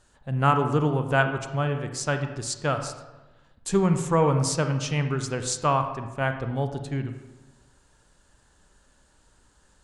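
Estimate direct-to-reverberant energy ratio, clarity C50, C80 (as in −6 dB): 7.0 dB, 8.5 dB, 10.0 dB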